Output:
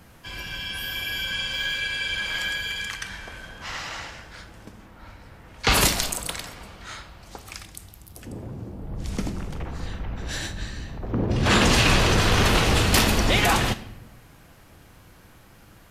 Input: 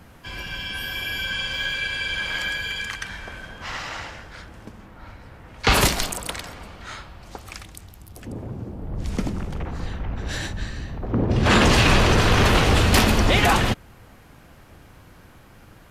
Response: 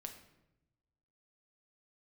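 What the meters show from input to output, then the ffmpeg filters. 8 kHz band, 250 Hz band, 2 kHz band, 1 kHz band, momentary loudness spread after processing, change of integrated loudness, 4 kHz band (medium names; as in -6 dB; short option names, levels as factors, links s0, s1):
+1.5 dB, -3.0 dB, -1.5 dB, -3.0 dB, 21 LU, -1.5 dB, 0.0 dB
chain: -filter_complex "[0:a]asplit=2[s0][s1];[1:a]atrim=start_sample=2205,highshelf=f=2600:g=11[s2];[s1][s2]afir=irnorm=-1:irlink=0,volume=1[s3];[s0][s3]amix=inputs=2:normalize=0,volume=0.447"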